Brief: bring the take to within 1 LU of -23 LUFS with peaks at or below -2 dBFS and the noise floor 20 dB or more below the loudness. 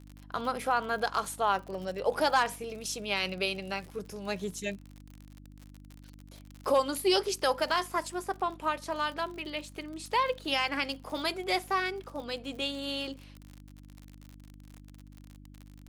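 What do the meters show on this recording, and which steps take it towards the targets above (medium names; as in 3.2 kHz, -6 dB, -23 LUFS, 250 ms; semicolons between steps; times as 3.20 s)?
tick rate 56 per s; hum 50 Hz; highest harmonic 300 Hz; hum level -48 dBFS; loudness -31.5 LUFS; peak level -14.0 dBFS; loudness target -23.0 LUFS
-> de-click; de-hum 50 Hz, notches 6; trim +8.5 dB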